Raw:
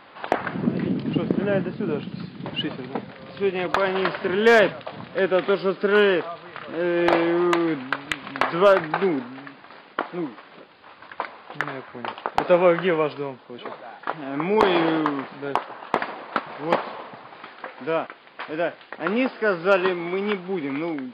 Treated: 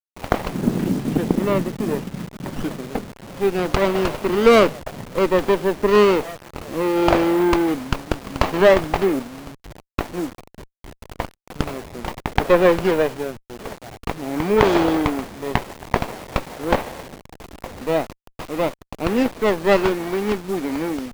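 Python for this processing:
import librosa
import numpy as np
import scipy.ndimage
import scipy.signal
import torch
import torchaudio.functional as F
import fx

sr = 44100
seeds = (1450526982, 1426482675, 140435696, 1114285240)

y = fx.delta_hold(x, sr, step_db=-34.5)
y = fx.running_max(y, sr, window=17)
y = F.gain(torch.from_numpy(y), 3.5).numpy()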